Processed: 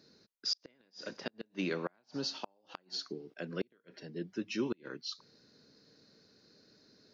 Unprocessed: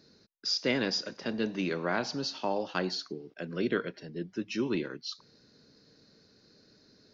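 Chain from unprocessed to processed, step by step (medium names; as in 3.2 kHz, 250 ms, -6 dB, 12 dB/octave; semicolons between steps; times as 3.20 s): inverted gate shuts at -20 dBFS, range -38 dB; bass shelf 79 Hz -10.5 dB; trim -2 dB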